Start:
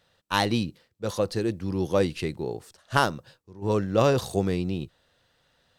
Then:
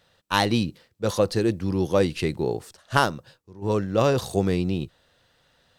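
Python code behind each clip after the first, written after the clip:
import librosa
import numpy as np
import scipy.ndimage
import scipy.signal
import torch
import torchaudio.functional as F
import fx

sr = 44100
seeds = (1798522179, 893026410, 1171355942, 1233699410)

y = fx.rider(x, sr, range_db=3, speed_s=0.5)
y = y * 10.0 ** (3.0 / 20.0)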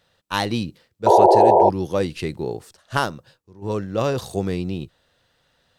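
y = fx.spec_paint(x, sr, seeds[0], shape='noise', start_s=1.06, length_s=0.64, low_hz=340.0, high_hz=980.0, level_db=-11.0)
y = y * 10.0 ** (-1.5 / 20.0)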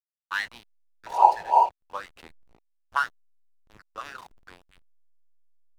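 y = fx.doubler(x, sr, ms=24.0, db=-9.5)
y = fx.filter_lfo_highpass(y, sr, shape='sine', hz=3.0, low_hz=890.0, high_hz=1900.0, q=6.0)
y = fx.backlash(y, sr, play_db=-23.0)
y = y * 10.0 ** (-11.5 / 20.0)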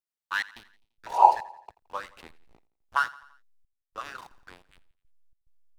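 y = fx.step_gate(x, sr, bpm=107, pattern='xxx.xx.xxx..xxxx', floor_db=-60.0, edge_ms=4.5)
y = fx.echo_feedback(y, sr, ms=85, feedback_pct=52, wet_db=-20)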